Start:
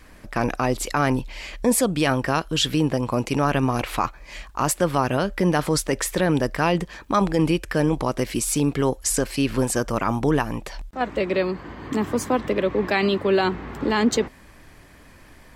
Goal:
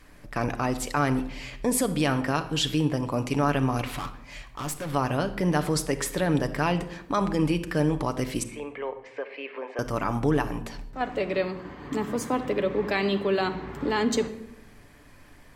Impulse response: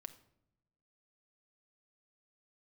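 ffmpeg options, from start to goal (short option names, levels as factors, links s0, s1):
-filter_complex "[0:a]asettb=1/sr,asplit=3[s0][s1][s2];[s0]atrim=end=3.864[s3];[s1]atrim=start=3.86:end=4.92,asetpts=PTS-STARTPTS,afade=t=in:d=0.004:c=qsin,afade=t=out:st=1.056:d=0.004:c=qsin,volume=18.8,asoftclip=hard,volume=0.0531[s4];[s2]atrim=start=4.916[s5];[s3][s4]acrossfade=d=0.004:c1=hsin:c2=qsin[s6];[s6][s5]acrossfade=d=0.004:c1=qsin:c2=hsin,asettb=1/sr,asplit=3[s7][s8][s9];[s7]atrim=end=8.434[s10];[s8]atrim=start=8.43:end=9.79,asetpts=PTS-STARTPTS,afade=t=in:d=0.004:c=qsin,afade=t=out:st=1.356:d=0.004:c=qsin,highpass=f=480:w=0.5412,highpass=f=480:w=1.3066,equalizer=f=780:t=q:w=4:g=-4,equalizer=f=1400:t=q:w=4:g=-8,equalizer=f=2200:t=q:w=4:g=5,lowpass=f=2400:w=0.5412,lowpass=f=2400:w=1.3066[s11];[s9]atrim=start=9.786[s12];[s10][s11]acrossfade=d=0.004:c1=hsin:c2=qsin[s13];[s13][s12]acrossfade=d=0.004:c1=qsin:c2=hsin[s14];[1:a]atrim=start_sample=2205,asetrate=35280,aresample=44100[s15];[s14][s15]afir=irnorm=-1:irlink=0"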